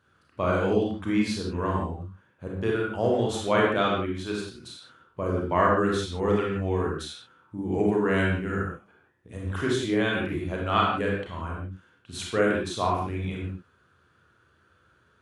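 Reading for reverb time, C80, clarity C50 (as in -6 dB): no single decay rate, 4.0 dB, 0.5 dB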